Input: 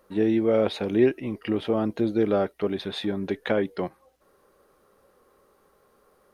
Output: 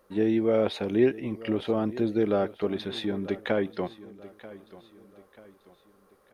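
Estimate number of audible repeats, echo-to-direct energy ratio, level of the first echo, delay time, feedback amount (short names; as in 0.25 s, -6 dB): 3, -17.0 dB, -18.0 dB, 0.937 s, 42%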